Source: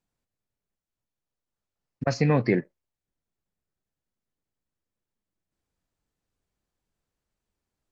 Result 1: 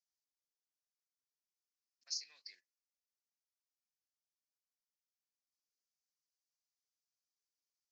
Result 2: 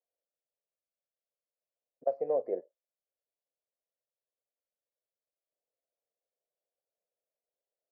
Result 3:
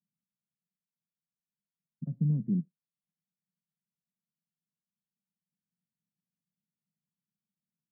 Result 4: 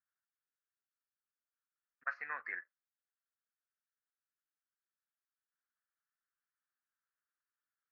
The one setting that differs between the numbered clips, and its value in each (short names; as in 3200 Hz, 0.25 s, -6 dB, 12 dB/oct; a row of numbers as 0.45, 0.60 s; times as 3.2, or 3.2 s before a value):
Butterworth band-pass, frequency: 5500, 570, 180, 1500 Hz